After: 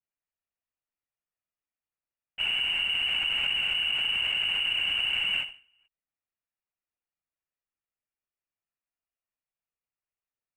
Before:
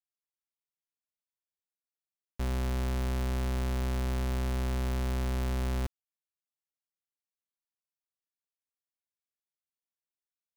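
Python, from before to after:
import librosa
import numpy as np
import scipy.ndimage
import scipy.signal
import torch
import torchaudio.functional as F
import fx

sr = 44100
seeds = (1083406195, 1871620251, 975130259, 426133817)

p1 = fx.freq_invert(x, sr, carrier_hz=2900)
p2 = fx.lpc_vocoder(p1, sr, seeds[0], excitation='whisper', order=10)
p3 = 10.0 ** (-35.0 / 20.0) * np.tanh(p2 / 10.0 ** (-35.0 / 20.0))
p4 = p2 + (p3 * 10.0 ** (-10.0 / 20.0))
y = fx.end_taper(p4, sr, db_per_s=150.0)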